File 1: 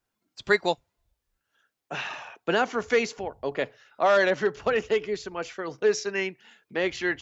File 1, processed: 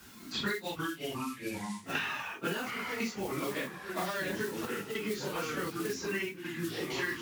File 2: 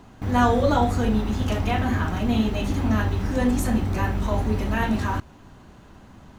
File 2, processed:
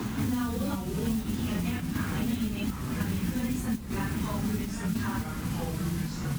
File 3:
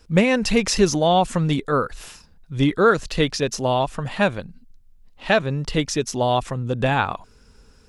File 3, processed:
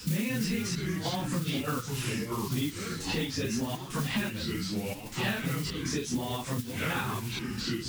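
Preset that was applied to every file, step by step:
random phases in long frames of 100 ms
downward compressor 5 to 1, threshold −28 dBFS
parametric band 230 Hz +7 dB 0.4 octaves
gate pattern "xxxxx..xxxxx." 100 BPM −12 dB
noise that follows the level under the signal 19 dB
delay with pitch and tempo change per echo 205 ms, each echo −4 semitones, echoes 3, each echo −6 dB
high-pass filter 100 Hz 6 dB per octave
parametric band 640 Hz −10 dB 1.1 octaves
multiband upward and downward compressor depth 100%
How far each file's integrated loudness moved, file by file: −8.5, −7.5, −11.0 LU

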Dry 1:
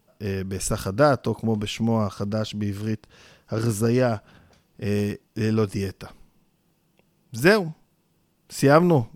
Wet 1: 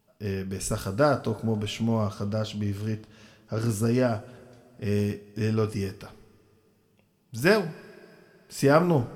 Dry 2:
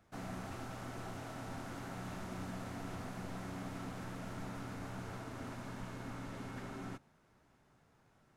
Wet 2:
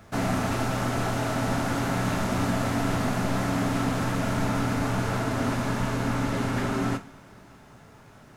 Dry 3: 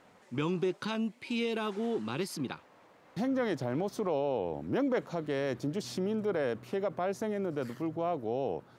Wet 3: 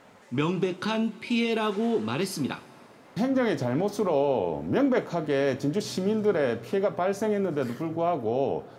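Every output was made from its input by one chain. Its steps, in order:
coupled-rooms reverb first 0.28 s, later 3 s, from −22 dB, DRR 7 dB
loudness normalisation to −27 LKFS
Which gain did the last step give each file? −4.5, +17.5, +6.0 decibels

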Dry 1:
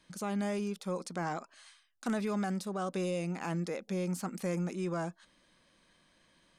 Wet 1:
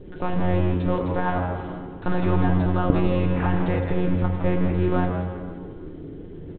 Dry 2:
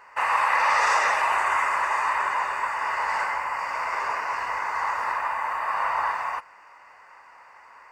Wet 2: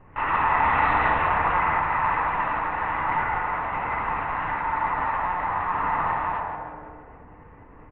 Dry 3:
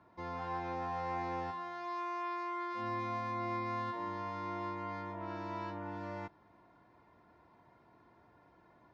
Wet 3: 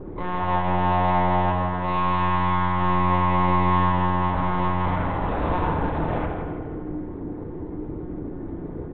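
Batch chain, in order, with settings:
in parallel at −7.5 dB: bit reduction 6 bits
on the sum: high-shelf EQ 2,200 Hz −7.5 dB
noise in a band 130–440 Hz −49 dBFS
one-pitch LPC vocoder at 8 kHz 180 Hz
on a send: echo with shifted repeats 164 ms, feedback 52%, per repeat −90 Hz, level −7 dB
on the sum: feedback delay network reverb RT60 1.8 s, low-frequency decay 0.8×, high-frequency decay 0.35×, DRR 3.5 dB
loudness normalisation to −24 LKFS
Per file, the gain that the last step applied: +8.5, −3.5, +13.5 decibels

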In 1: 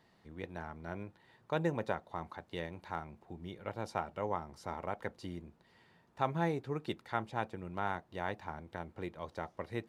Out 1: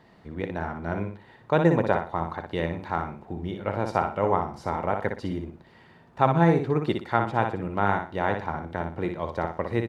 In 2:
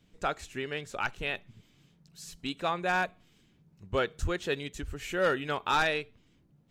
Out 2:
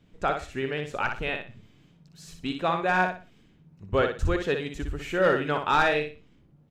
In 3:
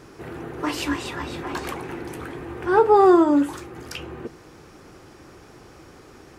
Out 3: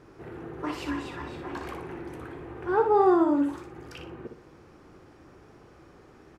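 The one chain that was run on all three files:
high-shelf EQ 3,400 Hz −11 dB
on a send: repeating echo 60 ms, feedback 28%, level −6 dB
on the sum: loudness normalisation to −27 LKFS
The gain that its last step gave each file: +12.5, +5.0, −6.5 decibels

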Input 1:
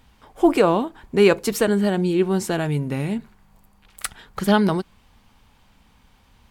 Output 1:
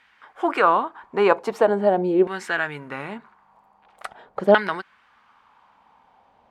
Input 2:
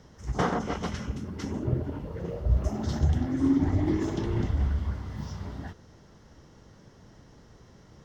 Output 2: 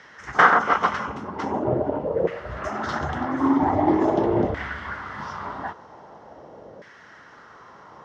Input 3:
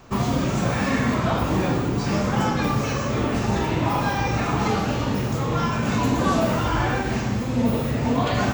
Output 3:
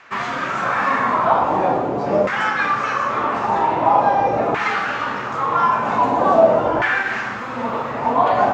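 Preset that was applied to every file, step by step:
auto-filter band-pass saw down 0.44 Hz 550–1,900 Hz
normalise the peak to −2 dBFS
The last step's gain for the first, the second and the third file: +10.0, +21.0, +13.5 decibels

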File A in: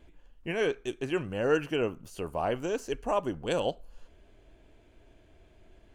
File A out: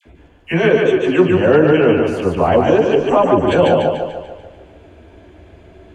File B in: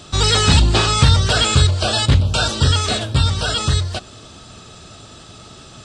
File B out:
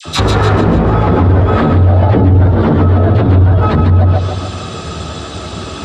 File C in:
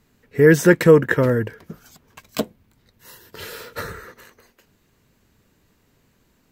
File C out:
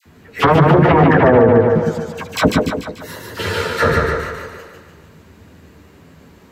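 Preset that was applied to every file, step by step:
wave folding −15.5 dBFS
multi-voice chorus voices 2, 0.91 Hz, delay 12 ms, depth 1.5 ms
high-pass filter 55 Hz 12 dB per octave
high-shelf EQ 3,100 Hz −10.5 dB
all-pass dispersion lows, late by 58 ms, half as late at 1,200 Hz
treble cut that deepens with the level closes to 720 Hz, closed at −22 dBFS
echo with a time of its own for lows and highs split 360 Hz, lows 108 ms, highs 146 ms, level −3 dB
brickwall limiter −21.5 dBFS
normalise the peak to −2 dBFS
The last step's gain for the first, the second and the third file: +19.5, +19.5, +19.5 decibels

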